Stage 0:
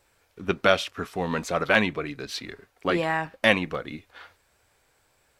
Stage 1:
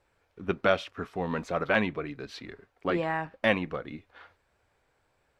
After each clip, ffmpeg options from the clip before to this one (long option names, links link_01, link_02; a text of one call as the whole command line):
ffmpeg -i in.wav -af "lowpass=frequency=1900:poles=1,volume=-3dB" out.wav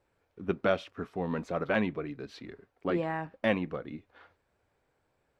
ffmpeg -i in.wav -af "equalizer=frequency=240:width=0.39:gain=6.5,volume=-6.5dB" out.wav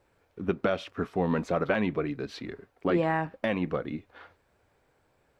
ffmpeg -i in.wav -af "alimiter=limit=-21dB:level=0:latency=1:release=171,volume=6.5dB" out.wav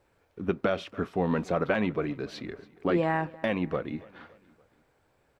ffmpeg -i in.wav -af "aecho=1:1:284|568|852:0.0794|0.0389|0.0191" out.wav